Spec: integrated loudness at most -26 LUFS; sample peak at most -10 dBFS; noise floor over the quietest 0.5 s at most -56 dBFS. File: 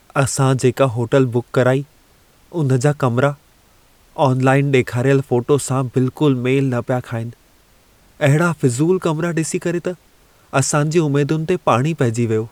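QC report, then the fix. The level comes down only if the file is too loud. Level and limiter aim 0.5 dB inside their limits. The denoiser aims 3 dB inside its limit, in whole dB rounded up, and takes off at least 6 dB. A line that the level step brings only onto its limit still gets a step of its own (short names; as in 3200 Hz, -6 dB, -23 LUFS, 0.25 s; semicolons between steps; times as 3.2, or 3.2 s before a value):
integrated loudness -17.5 LUFS: fail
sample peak -2.5 dBFS: fail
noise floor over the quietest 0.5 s -52 dBFS: fail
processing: gain -9 dB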